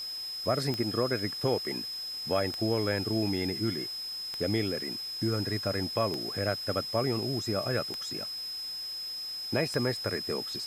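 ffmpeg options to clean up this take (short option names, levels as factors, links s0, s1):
-af "adeclick=t=4,bandreject=f=5100:w=30,afwtdn=0.0032"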